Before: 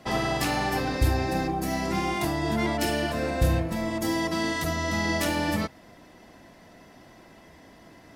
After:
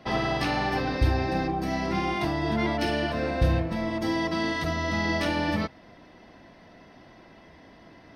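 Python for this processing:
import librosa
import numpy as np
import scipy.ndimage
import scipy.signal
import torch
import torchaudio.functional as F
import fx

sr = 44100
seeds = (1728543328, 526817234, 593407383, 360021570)

y = scipy.signal.savgol_filter(x, 15, 4, mode='constant')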